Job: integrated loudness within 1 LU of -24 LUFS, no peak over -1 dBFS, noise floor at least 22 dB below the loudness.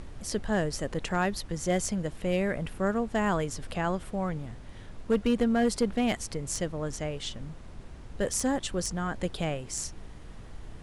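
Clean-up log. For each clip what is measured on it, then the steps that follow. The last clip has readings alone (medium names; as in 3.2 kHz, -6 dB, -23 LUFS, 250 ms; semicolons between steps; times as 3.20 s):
clipped samples 0.3%; clipping level -18.0 dBFS; noise floor -46 dBFS; noise floor target -53 dBFS; loudness -30.5 LUFS; peak level -18.0 dBFS; loudness target -24.0 LUFS
-> clip repair -18 dBFS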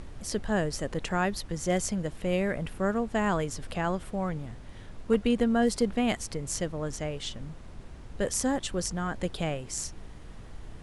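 clipped samples 0.0%; noise floor -46 dBFS; noise floor target -52 dBFS
-> noise print and reduce 6 dB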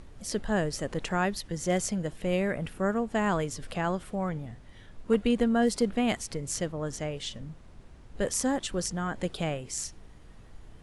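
noise floor -51 dBFS; noise floor target -52 dBFS
-> noise print and reduce 6 dB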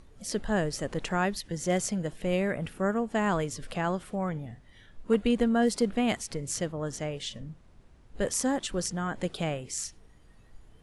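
noise floor -57 dBFS; loudness -30.0 LUFS; peak level -12.0 dBFS; loudness target -24.0 LUFS
-> trim +6 dB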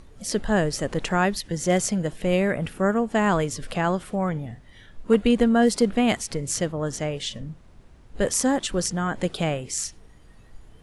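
loudness -24.0 LUFS; peak level -6.0 dBFS; noise floor -51 dBFS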